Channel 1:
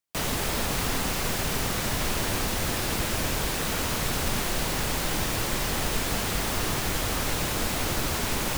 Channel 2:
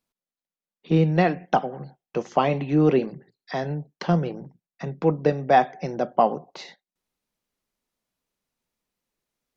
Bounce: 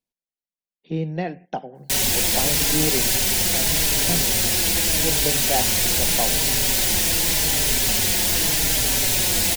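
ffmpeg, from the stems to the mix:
ffmpeg -i stem1.wav -i stem2.wav -filter_complex "[0:a]highshelf=frequency=2500:gain=11.5,acontrast=67,asplit=2[link_01][link_02];[link_02]adelay=4.7,afreqshift=-0.84[link_03];[link_01][link_03]amix=inputs=2:normalize=1,adelay=1750,volume=-1.5dB[link_04];[1:a]volume=-6.5dB[link_05];[link_04][link_05]amix=inputs=2:normalize=0,equalizer=frequency=1200:width=3.4:gain=-13.5" out.wav

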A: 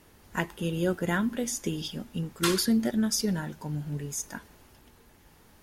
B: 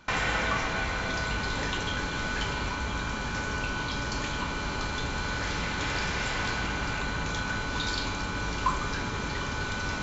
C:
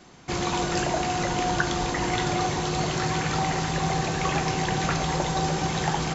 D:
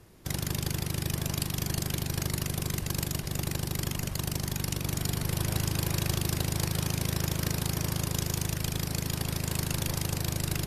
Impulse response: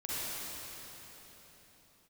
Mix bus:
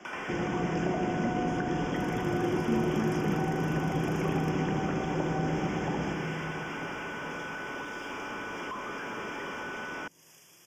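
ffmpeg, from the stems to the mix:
-filter_complex "[0:a]volume=-5dB,asplit=2[link_01][link_02];[1:a]bass=frequency=250:gain=-7,treble=frequency=4000:gain=1,asplit=2[link_03][link_04];[link_04]highpass=frequency=720:poles=1,volume=38dB,asoftclip=type=tanh:threshold=-14.5dB[link_05];[link_03][link_05]amix=inputs=2:normalize=0,lowpass=frequency=3000:poles=1,volume=-6dB,acrusher=bits=4:mix=0:aa=0.5,adelay=50,volume=-6dB[link_06];[2:a]volume=0.5dB,asplit=2[link_07][link_08];[link_08]volume=-9.5dB[link_09];[3:a]aemphasis=mode=production:type=riaa,adelay=1700,volume=-9dB,asplit=2[link_10][link_11];[link_11]volume=-18.5dB[link_12];[link_02]apad=whole_len=545474[link_13];[link_10][link_13]sidechaingate=range=-33dB:threshold=-55dB:ratio=16:detection=peak[link_14];[4:a]atrim=start_sample=2205[link_15];[link_09][link_12]amix=inputs=2:normalize=0[link_16];[link_16][link_15]afir=irnorm=-1:irlink=0[link_17];[link_01][link_06][link_07][link_14][link_17]amix=inputs=5:normalize=0,acrossover=split=170 5900:gain=0.2 1 0.112[link_18][link_19][link_20];[link_18][link_19][link_20]amix=inputs=3:normalize=0,acrossover=split=440[link_21][link_22];[link_22]acompressor=threshold=-38dB:ratio=5[link_23];[link_21][link_23]amix=inputs=2:normalize=0,asuperstop=centerf=4100:order=8:qfactor=2.5"

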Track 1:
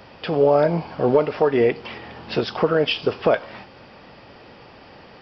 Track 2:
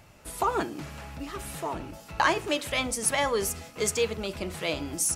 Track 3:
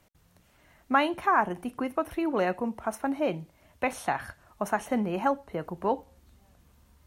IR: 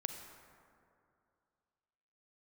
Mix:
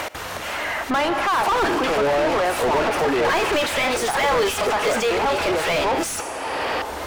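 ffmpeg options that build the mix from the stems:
-filter_complex "[0:a]adelay=1600,volume=-10dB[link_01];[1:a]adelay=1050,volume=3dB,asplit=2[link_02][link_03];[link_03]volume=-17dB[link_04];[2:a]volume=-7dB,asplit=3[link_05][link_06][link_07];[link_06]volume=-7.5dB[link_08];[link_07]apad=whole_len=273855[link_09];[link_02][link_09]sidechaincompress=threshold=-39dB:ratio=8:attack=6.7:release=114[link_10];[3:a]atrim=start_sample=2205[link_11];[link_04][link_08]amix=inputs=2:normalize=0[link_12];[link_12][link_11]afir=irnorm=-1:irlink=0[link_13];[link_01][link_10][link_05][link_13]amix=inputs=4:normalize=0,equalizer=frequency=170:width_type=o:width=1:gain=-13,acompressor=mode=upward:threshold=-31dB:ratio=2.5,asplit=2[link_14][link_15];[link_15]highpass=frequency=720:poles=1,volume=35dB,asoftclip=type=tanh:threshold=-12.5dB[link_16];[link_14][link_16]amix=inputs=2:normalize=0,lowpass=frequency=2100:poles=1,volume=-6dB"

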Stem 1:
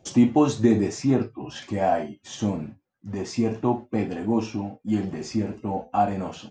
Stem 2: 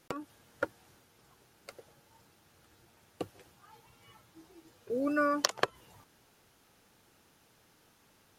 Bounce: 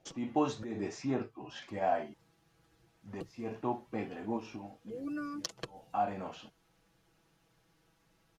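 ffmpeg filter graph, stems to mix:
ffmpeg -i stem1.wav -i stem2.wav -filter_complex "[0:a]lowpass=frequency=3700:poles=1,lowshelf=frequency=410:gain=-11,volume=-5dB,asplit=3[link_01][link_02][link_03];[link_01]atrim=end=2.14,asetpts=PTS-STARTPTS,afade=type=out:start_time=2.136:duration=0.004:curve=hsin[link_04];[link_02]atrim=start=2.14:end=2.89,asetpts=PTS-STARTPTS,volume=0[link_05];[link_03]atrim=start=2.89,asetpts=PTS-STARTPTS,afade=type=in:duration=0.004:curve=hsin[link_06];[link_04][link_05][link_06]concat=n=3:v=0:a=1[link_07];[1:a]lowshelf=frequency=120:gain=11,aecho=1:1:6.1:0.78,acrossover=split=390|3000[link_08][link_09][link_10];[link_09]acompressor=threshold=-58dB:ratio=1.5[link_11];[link_08][link_11][link_10]amix=inputs=3:normalize=0,volume=-8.5dB,afade=type=in:start_time=1.68:duration=0.53:silence=0.398107,asplit=2[link_12][link_13];[link_13]apad=whole_len=286828[link_14];[link_07][link_14]sidechaincompress=threshold=-59dB:ratio=8:attack=7.4:release=188[link_15];[link_15][link_12]amix=inputs=2:normalize=0,highshelf=frequency=9400:gain=-9" out.wav

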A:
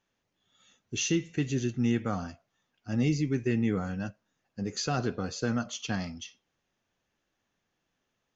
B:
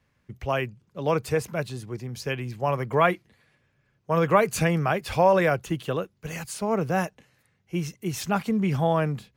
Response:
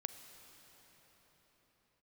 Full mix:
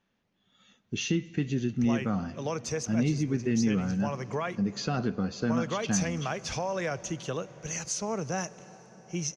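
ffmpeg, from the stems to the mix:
-filter_complex "[0:a]lowpass=4700,equalizer=frequency=200:width_type=o:width=0.53:gain=8.5,volume=0.5dB,asplit=2[link_01][link_02];[link_02]volume=-9dB[link_03];[1:a]alimiter=limit=-15dB:level=0:latency=1:release=358,lowpass=frequency=6100:width_type=q:width=10,adelay=1400,volume=-7dB,asplit=2[link_04][link_05];[link_05]volume=-4.5dB[link_06];[2:a]atrim=start_sample=2205[link_07];[link_03][link_06]amix=inputs=2:normalize=0[link_08];[link_08][link_07]afir=irnorm=-1:irlink=0[link_09];[link_01][link_04][link_09]amix=inputs=3:normalize=0,acompressor=threshold=-32dB:ratio=1.5"

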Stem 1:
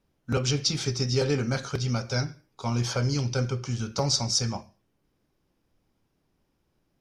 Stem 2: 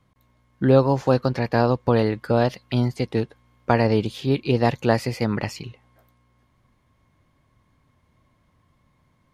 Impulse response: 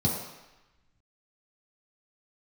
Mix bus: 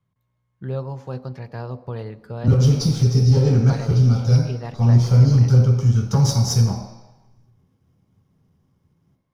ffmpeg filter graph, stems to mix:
-filter_complex "[0:a]aeval=exprs='if(lt(val(0),0),0.447*val(0),val(0))':channel_layout=same,adelay=2150,volume=1.5dB,asplit=2[link_01][link_02];[link_02]volume=-9.5dB[link_03];[1:a]volume=-14dB,asplit=3[link_04][link_05][link_06];[link_05]volume=-22dB[link_07];[link_06]apad=whole_len=403657[link_08];[link_01][link_08]sidechaincompress=threshold=-37dB:ratio=8:attack=16:release=937[link_09];[2:a]atrim=start_sample=2205[link_10];[link_03][link_07]amix=inputs=2:normalize=0[link_11];[link_11][link_10]afir=irnorm=-1:irlink=0[link_12];[link_09][link_04][link_12]amix=inputs=3:normalize=0"

